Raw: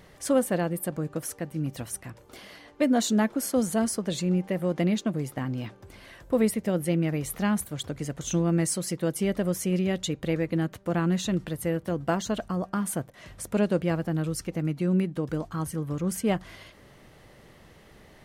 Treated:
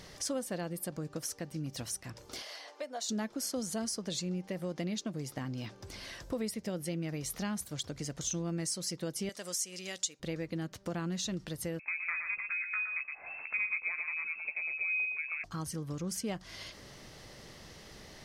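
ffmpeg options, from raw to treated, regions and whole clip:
ffmpeg -i in.wav -filter_complex "[0:a]asettb=1/sr,asplit=3[link_01][link_02][link_03];[link_01]atrim=end=2.424[link_04];[link_02]atrim=start=2.42:end=3.09,asetpts=PTS-STARTPTS,afade=type=in:duration=0.004:curve=qsin,afade=type=out:start_time=0.666:duration=0.004:curve=qsin,acompressor=threshold=-52dB:ratio=1.5:attack=3.2:release=140:knee=1:detection=peak,highpass=frequency=640:width_type=q:width=1.8[link_05];[link_03]atrim=start=3.086[link_06];[link_04][link_05]acrossfade=duration=0.004:curve1=hsin:curve2=qsin[link_07];[link_07][link_06]acrossfade=duration=0.004:curve1=qsin:curve2=hsin,asettb=1/sr,asplit=3[link_08][link_09][link_10];[link_08]atrim=end=9.294[link_11];[link_09]atrim=start=9.29:end=10.2,asetpts=PTS-STARTPTS,afade=type=in:duration=0.004:curve=qsin,afade=type=out:start_time=0.906:duration=0.004:curve=qsin,highpass=frequency=1300:poles=1,equalizer=frequency=7900:width=1.2:gain=10[link_12];[link_10]atrim=start=10.196[link_13];[link_11][link_12]acrossfade=duration=0.004:curve1=hsin:curve2=qsin[link_14];[link_14][link_13]acrossfade=duration=0.004:curve1=qsin:curve2=hsin,asettb=1/sr,asplit=3[link_15][link_16][link_17];[link_15]atrim=end=11.794[link_18];[link_16]atrim=start=11.79:end=15.44,asetpts=PTS-STARTPTS,afade=type=in:duration=0.004:curve=qsin,afade=type=out:start_time=3.646:duration=0.004:curve=qsin,lowpass=frequency=2300:width_type=q:width=0.5098,lowpass=frequency=2300:width_type=q:width=0.6013,lowpass=frequency=2300:width_type=q:width=0.9,lowpass=frequency=2300:width_type=q:width=2.563,afreqshift=-2700,asplit=2[link_19][link_20];[link_20]adelay=14,volume=-7dB[link_21];[link_19][link_21]amix=inputs=2:normalize=0,atrim=end_sample=160965,aecho=1:1:117:0.422,atrim=end_sample=160965[link_22];[link_17]atrim=start=15.436[link_23];[link_18][link_22]acrossfade=duration=0.004:curve1=hsin:curve2=qsin[link_24];[link_24][link_23]acrossfade=duration=0.004:curve1=qsin:curve2=hsin,equalizer=frequency=5300:width=1.2:gain=13,acompressor=threshold=-39dB:ratio=2.5" out.wav

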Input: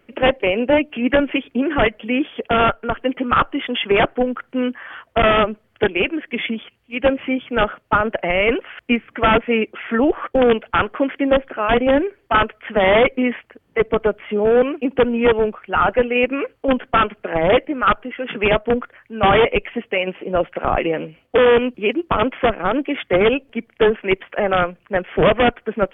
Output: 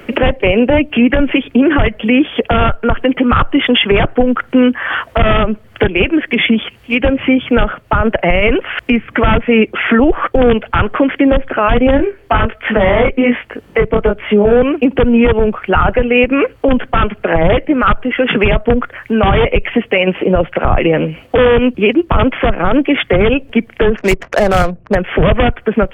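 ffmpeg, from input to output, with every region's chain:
ffmpeg -i in.wav -filter_complex "[0:a]asettb=1/sr,asplit=3[link_01][link_02][link_03];[link_01]atrim=end=11.974[link_04];[link_02]atrim=start=11.97:end=14.53,asetpts=PTS-STARTPTS,afade=type=in:duration=0.004:curve=qsin,afade=type=out:start_time=2.556:duration=0.004:curve=qsin,flanger=delay=18.5:depth=4.4:speed=1.3,acrossover=split=2700[link_05][link_06];[link_06]acompressor=threshold=-39dB:ratio=4:attack=1:release=60[link_07];[link_05][link_07]amix=inputs=2:normalize=0[link_08];[link_03]atrim=start=14.526[link_09];[link_04][link_08]acrossfade=duration=0.004:curve1=hsin:curve2=qsin[link_10];[link_10][link_09]acrossfade=duration=0.004:curve1=qsin:curve2=hsin,asettb=1/sr,asplit=3[link_11][link_12][link_13];[link_11]atrim=end=23.974[link_14];[link_12]atrim=start=23.97:end=24.95,asetpts=PTS-STARTPTS,afade=type=in:duration=0.004:curve=qsin,afade=type=out:start_time=0.976:duration=0.004:curve=qsin,equalizer=frequency=670:width_type=o:width=0.21:gain=5.5,adynamicsmooth=sensitivity=3:basefreq=630[link_15];[link_13]atrim=start=24.946[link_16];[link_14][link_15]acrossfade=duration=0.004:curve1=hsin:curve2=qsin[link_17];[link_17][link_16]acrossfade=duration=0.004:curve1=qsin:curve2=hsin,acrossover=split=130[link_18][link_19];[link_19]acompressor=threshold=-37dB:ratio=2.5[link_20];[link_18][link_20]amix=inputs=2:normalize=0,alimiter=level_in=23.5dB:limit=-1dB:release=50:level=0:latency=1,volume=-1dB" out.wav

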